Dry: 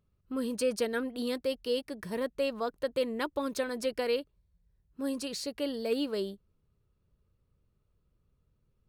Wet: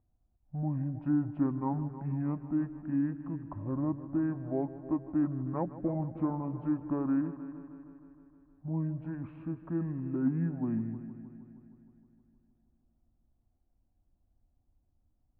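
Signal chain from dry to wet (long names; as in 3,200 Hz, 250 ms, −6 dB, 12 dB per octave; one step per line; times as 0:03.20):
low-pass filter 1,900 Hz 24 dB per octave
echo machine with several playback heads 90 ms, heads first and second, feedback 58%, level −16 dB
wrong playback speed 78 rpm record played at 45 rpm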